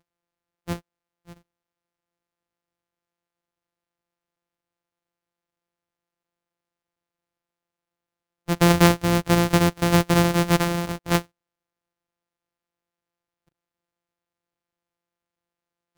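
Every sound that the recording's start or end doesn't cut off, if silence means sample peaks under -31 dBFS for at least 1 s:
8.48–11.22

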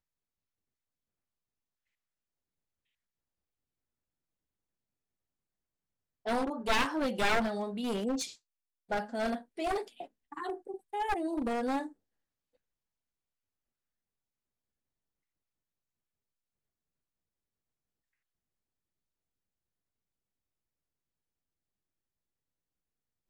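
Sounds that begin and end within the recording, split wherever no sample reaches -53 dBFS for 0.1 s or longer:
6.26–8.36
8.9–9.43
9.57–10.07
10.32–10.78
10.93–11.92

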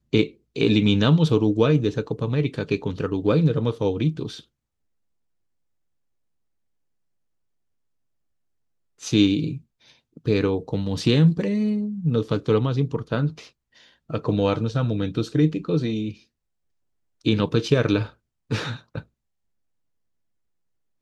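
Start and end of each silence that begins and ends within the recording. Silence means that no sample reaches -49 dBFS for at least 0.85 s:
4.44–8.99
16.23–17.21

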